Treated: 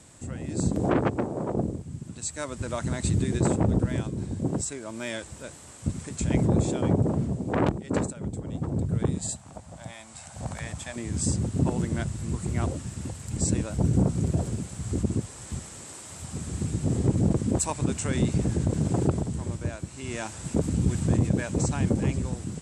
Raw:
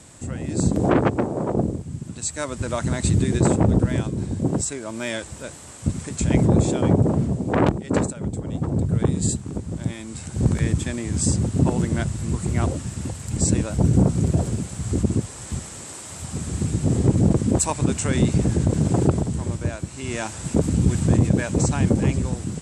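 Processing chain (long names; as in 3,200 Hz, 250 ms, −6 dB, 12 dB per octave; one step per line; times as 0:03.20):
0:09.18–0:10.96: low shelf with overshoot 510 Hz −9.5 dB, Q 3
level −5.5 dB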